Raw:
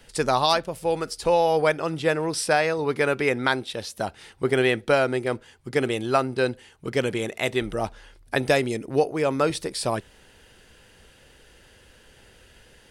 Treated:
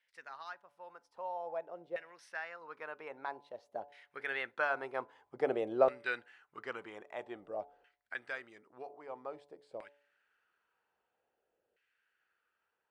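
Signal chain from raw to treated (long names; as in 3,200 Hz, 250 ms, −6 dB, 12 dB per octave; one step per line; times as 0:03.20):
source passing by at 0:05.52, 22 m/s, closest 15 metres
auto-filter band-pass saw down 0.51 Hz 520–2,100 Hz
hum removal 143.7 Hz, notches 7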